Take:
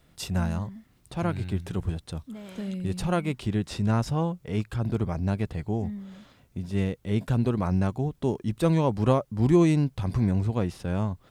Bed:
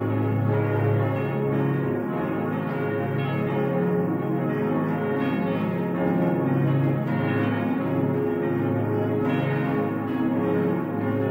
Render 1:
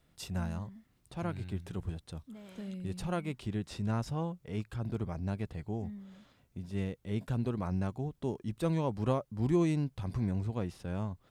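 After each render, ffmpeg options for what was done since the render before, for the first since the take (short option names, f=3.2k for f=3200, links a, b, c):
-af "volume=-8.5dB"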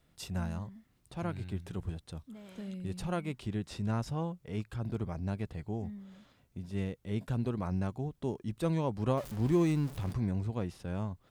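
-filter_complex "[0:a]asettb=1/sr,asplit=3[a][b][c];[a]atrim=end=9.174[d];[b]atrim=start=9.17:end=10.13,asetpts=PTS-STARTPTS,afade=t=in:d=0.004:c=qsin,afade=t=out:st=0.956:d=0.004:c=qsin,aeval=exprs='val(0)+0.5*0.00944*sgn(val(0))':c=same[e];[c]atrim=start=10.126[f];[d][e]acrossfade=d=0.004:c1=hsin:c2=qsin[g];[g][f]acrossfade=d=0.004:c1=qsin:c2=hsin"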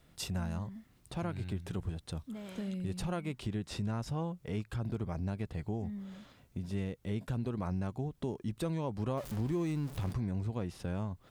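-filter_complex "[0:a]asplit=2[a][b];[b]alimiter=level_in=1.5dB:limit=-24dB:level=0:latency=1,volume=-1.5dB,volume=-1dB[c];[a][c]amix=inputs=2:normalize=0,acompressor=threshold=-35dB:ratio=2.5"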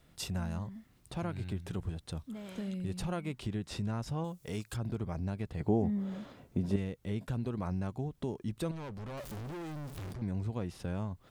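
-filter_complex "[0:a]asettb=1/sr,asplit=3[a][b][c];[a]atrim=end=4.244[d];[b]atrim=start=4.24:end=4.77,asetpts=PTS-STARTPTS,afade=t=in:d=0.004:c=qsin,afade=t=out:st=0.526:d=0.004:c=qsin,bass=f=250:g=-3,treble=f=4k:g=12[e];[c]atrim=start=4.766[f];[d][e]acrossfade=d=0.004:c1=hsin:c2=qsin[g];[g][f]acrossfade=d=0.004:c1=qsin:c2=hsin,asettb=1/sr,asplit=3[h][i][j];[h]atrim=end=5.604[k];[i]atrim=start=5.6:end=6.76,asetpts=PTS-STARTPTS,afade=t=in:d=0.004:c=qsin,afade=t=out:st=1.156:d=0.004:c=qsin,equalizer=f=410:w=0.35:g=11[l];[j]atrim=start=6.756[m];[k][l]acrossfade=d=0.004:c1=hsin:c2=qsin[n];[n][m]acrossfade=d=0.004:c1=qsin:c2=hsin,asettb=1/sr,asplit=3[o][p][q];[o]atrim=end=8.714[r];[p]atrim=start=8.71:end=10.22,asetpts=PTS-STARTPTS,afade=t=in:d=0.004:c=qsin,afade=t=out:st=1.506:d=0.004:c=qsin,asoftclip=type=hard:threshold=-40dB[s];[q]atrim=start=10.216[t];[r][s]acrossfade=d=0.004:c1=hsin:c2=qsin[u];[u][t]acrossfade=d=0.004:c1=qsin:c2=hsin"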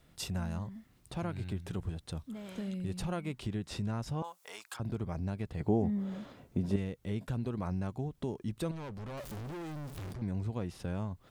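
-filter_complex "[0:a]asettb=1/sr,asplit=3[a][b][c];[a]atrim=end=4.224[d];[b]atrim=start=4.22:end=4.8,asetpts=PTS-STARTPTS,afade=t=in:d=0.004:c=qsin,afade=t=out:st=0.576:d=0.004:c=qsin,highpass=f=920:t=q:w=1.7[e];[c]atrim=start=4.796[f];[d][e]acrossfade=d=0.004:c1=hsin:c2=qsin[g];[g][f]acrossfade=d=0.004:c1=qsin:c2=hsin"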